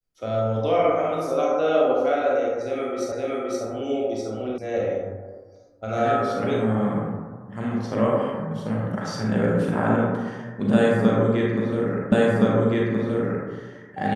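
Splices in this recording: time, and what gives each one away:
3.12 repeat of the last 0.52 s
4.58 sound cut off
12.12 repeat of the last 1.37 s

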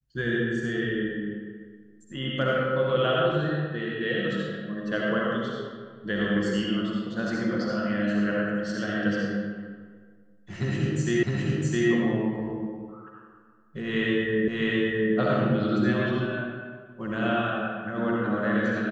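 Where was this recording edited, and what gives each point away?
11.23 repeat of the last 0.66 s
14.48 repeat of the last 0.66 s

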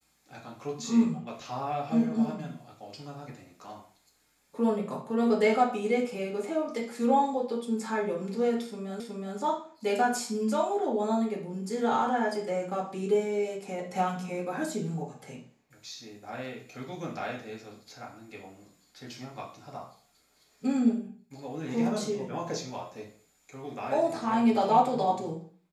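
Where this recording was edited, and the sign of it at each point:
9 repeat of the last 0.37 s

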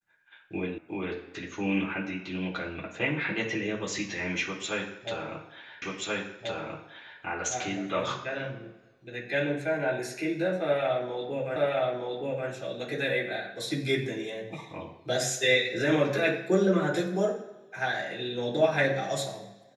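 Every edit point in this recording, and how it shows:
0.78 sound cut off
5.82 repeat of the last 1.38 s
11.56 repeat of the last 0.92 s

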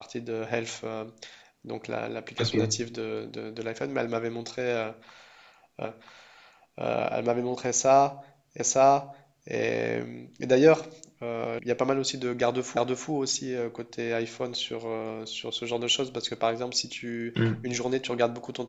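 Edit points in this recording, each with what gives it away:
5.85 repeat of the last 0.99 s
8.6 repeat of the last 0.91 s
11.59 sound cut off
12.77 repeat of the last 0.33 s

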